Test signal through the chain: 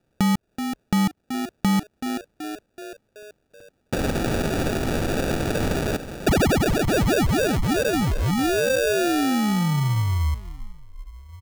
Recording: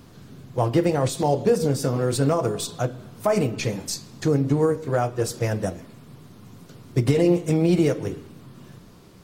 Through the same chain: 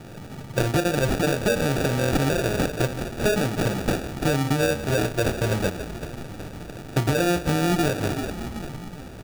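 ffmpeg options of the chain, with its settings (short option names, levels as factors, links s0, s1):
-filter_complex "[0:a]acontrast=61,asplit=6[s0][s1][s2][s3][s4][s5];[s1]adelay=378,afreqshift=-56,volume=0.168[s6];[s2]adelay=756,afreqshift=-112,volume=0.0923[s7];[s3]adelay=1134,afreqshift=-168,volume=0.0507[s8];[s4]adelay=1512,afreqshift=-224,volume=0.0279[s9];[s5]adelay=1890,afreqshift=-280,volume=0.0153[s10];[s0][s6][s7][s8][s9][s10]amix=inputs=6:normalize=0,aexciter=amount=1.5:drive=9.9:freq=3000,acompressor=threshold=0.112:ratio=3,acrusher=samples=42:mix=1:aa=0.000001,volume=0.841"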